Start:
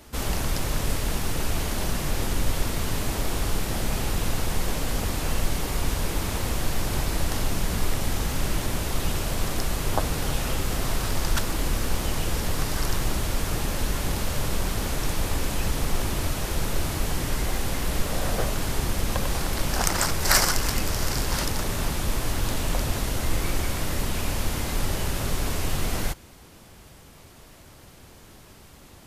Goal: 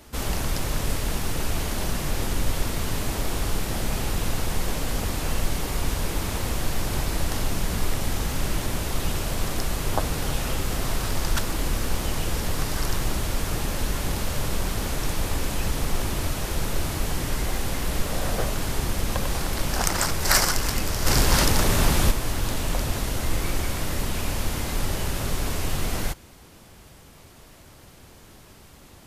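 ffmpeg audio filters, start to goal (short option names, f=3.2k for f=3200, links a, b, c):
-filter_complex "[0:a]asplit=3[a][b][c];[a]afade=t=out:st=21.05:d=0.02[d];[b]acontrast=82,afade=t=in:st=21.05:d=0.02,afade=t=out:st=22.1:d=0.02[e];[c]afade=t=in:st=22.1:d=0.02[f];[d][e][f]amix=inputs=3:normalize=0"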